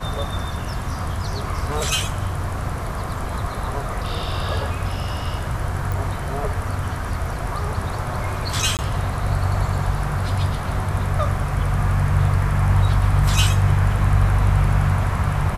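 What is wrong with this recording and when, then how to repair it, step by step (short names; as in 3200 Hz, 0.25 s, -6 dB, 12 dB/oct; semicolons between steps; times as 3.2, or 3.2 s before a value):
5.92 pop
8.77–8.79 gap 18 ms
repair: de-click; interpolate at 8.77, 18 ms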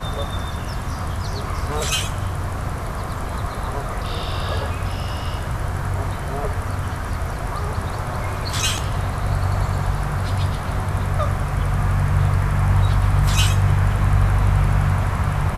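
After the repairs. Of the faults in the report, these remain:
none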